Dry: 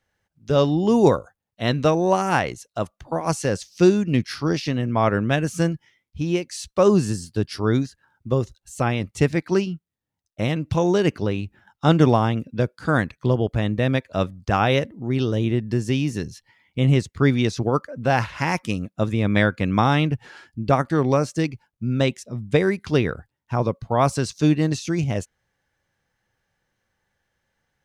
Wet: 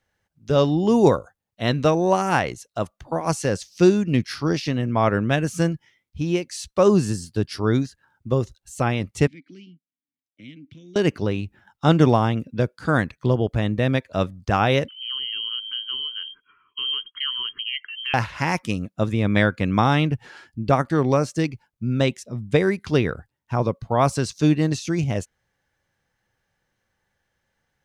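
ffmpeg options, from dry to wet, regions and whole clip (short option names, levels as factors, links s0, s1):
-filter_complex "[0:a]asettb=1/sr,asplit=3[s0][s1][s2];[s0]atrim=end=9.274[s3];[s1]atrim=start=9.27:end=10.96,asetpts=PTS-STARTPTS,afade=t=in:d=0.004:c=qsin,afade=t=out:st=1.686:d=0.004:c=qsin,acrossover=split=160|3000[s4][s5][s6];[s5]acompressor=threshold=0.0178:ratio=3:attack=3.2:release=140:knee=2.83:detection=peak[s7];[s4][s7][s6]amix=inputs=3:normalize=0,asplit=3[s8][s9][s10];[s8]bandpass=f=270:t=q:w=8,volume=1[s11];[s9]bandpass=f=2290:t=q:w=8,volume=0.501[s12];[s10]bandpass=f=3010:t=q:w=8,volume=0.355[s13];[s11][s12][s13]amix=inputs=3:normalize=0[s14];[s2]atrim=start=10.956[s15];[s3][s14]acrossfade=d=0.004:c1=hsin:c2=qsin[s16];[s16][s15]acrossfade=d=0.004:c1=qsin:c2=hsin,asettb=1/sr,asplit=3[s17][s18][s19];[s17]atrim=end=14.884[s20];[s18]atrim=start=14.88:end=18.14,asetpts=PTS-STARTPTS,afade=t=in:d=0.004:c=qsin,afade=t=out:st=3.256:d=0.004:c=qsin,lowpass=f=2800:t=q:w=0.5098,lowpass=f=2800:t=q:w=0.6013,lowpass=f=2800:t=q:w=0.9,lowpass=f=2800:t=q:w=2.563,afreqshift=-3300,acompressor=threshold=0.0282:ratio=2:attack=3.2:release=140:knee=1:detection=peak,asuperstop=centerf=660:order=20:qfactor=1.3[s21];[s19]atrim=start=18.136[s22];[s20][s21]acrossfade=d=0.004:c1=hsin:c2=qsin[s23];[s23][s22]acrossfade=d=0.004:c1=qsin:c2=hsin"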